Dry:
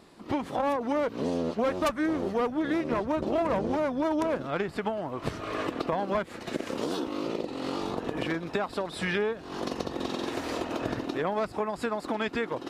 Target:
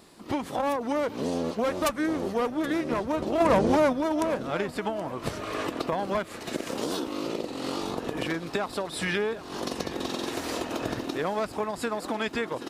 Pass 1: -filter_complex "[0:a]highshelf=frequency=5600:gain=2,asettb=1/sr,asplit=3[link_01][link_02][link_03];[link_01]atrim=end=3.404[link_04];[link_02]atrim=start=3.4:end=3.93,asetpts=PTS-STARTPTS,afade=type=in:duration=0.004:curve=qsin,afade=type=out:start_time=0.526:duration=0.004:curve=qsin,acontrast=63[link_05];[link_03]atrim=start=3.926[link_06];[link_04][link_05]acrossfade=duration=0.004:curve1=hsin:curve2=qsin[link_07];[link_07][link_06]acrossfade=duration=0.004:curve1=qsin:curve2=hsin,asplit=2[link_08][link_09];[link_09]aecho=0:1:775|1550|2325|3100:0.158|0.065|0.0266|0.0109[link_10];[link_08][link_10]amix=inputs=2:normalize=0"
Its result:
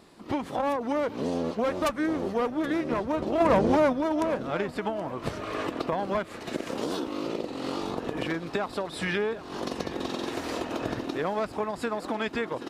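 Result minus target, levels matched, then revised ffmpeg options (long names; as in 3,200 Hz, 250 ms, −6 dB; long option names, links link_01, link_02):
8,000 Hz band −5.5 dB
-filter_complex "[0:a]highshelf=frequency=5600:gain=11,asettb=1/sr,asplit=3[link_01][link_02][link_03];[link_01]atrim=end=3.404[link_04];[link_02]atrim=start=3.4:end=3.93,asetpts=PTS-STARTPTS,afade=type=in:duration=0.004:curve=qsin,afade=type=out:start_time=0.526:duration=0.004:curve=qsin,acontrast=63[link_05];[link_03]atrim=start=3.926[link_06];[link_04][link_05]acrossfade=duration=0.004:curve1=hsin:curve2=qsin[link_07];[link_07][link_06]acrossfade=duration=0.004:curve1=qsin:curve2=hsin,asplit=2[link_08][link_09];[link_09]aecho=0:1:775|1550|2325|3100:0.158|0.065|0.0266|0.0109[link_10];[link_08][link_10]amix=inputs=2:normalize=0"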